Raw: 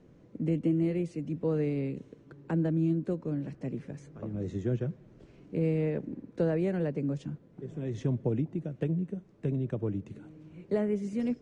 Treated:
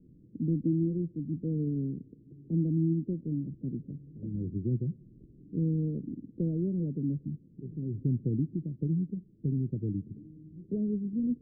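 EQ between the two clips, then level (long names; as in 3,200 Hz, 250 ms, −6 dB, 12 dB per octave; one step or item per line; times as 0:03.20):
inverse Chebyshev low-pass filter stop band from 1,100 Hz, stop band 60 dB
+1.5 dB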